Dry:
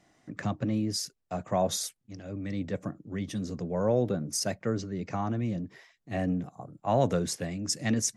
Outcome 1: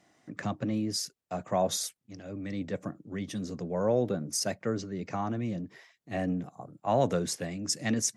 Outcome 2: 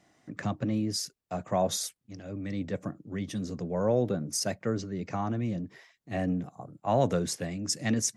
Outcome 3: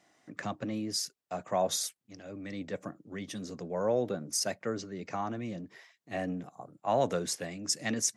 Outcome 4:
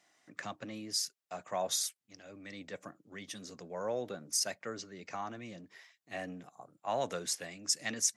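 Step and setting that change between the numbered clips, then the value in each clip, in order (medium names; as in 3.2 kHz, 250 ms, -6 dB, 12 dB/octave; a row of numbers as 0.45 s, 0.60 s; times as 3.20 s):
high-pass, cutoff frequency: 140 Hz, 50 Hz, 410 Hz, 1.4 kHz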